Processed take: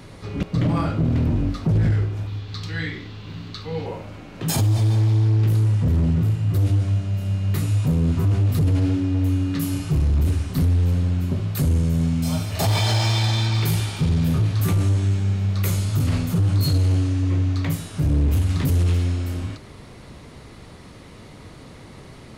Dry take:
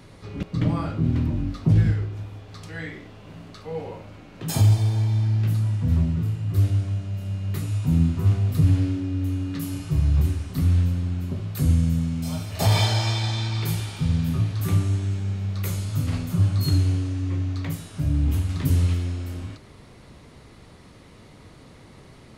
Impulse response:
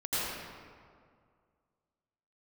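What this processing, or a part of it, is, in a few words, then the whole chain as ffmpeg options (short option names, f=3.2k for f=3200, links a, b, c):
limiter into clipper: -filter_complex "[0:a]asettb=1/sr,asplit=3[a][b][c];[a]atrim=end=2.274[d];[b]atrim=start=2.27:end=3.86,asetpts=PTS-STARTPTS,afade=t=in:d=0.004:c=qsin,afade=t=out:st=1.586:d=0.004:c=qsin,equalizer=f=100:t=o:w=0.67:g=5,equalizer=f=630:t=o:w=0.67:g=-10,equalizer=f=4k:t=o:w=0.67:g=9,equalizer=f=10k:t=o:w=0.67:g=-10[e];[c]atrim=start=3.856[f];[d][e]acrossfade=d=0.004:c1=hsin:c2=qsin[g];[g][f]acrossfade=d=0.004:c1=qsin:c2=hsin,alimiter=limit=-16.5dB:level=0:latency=1:release=19,asoftclip=type=hard:threshold=-20.5dB,volume=5.5dB"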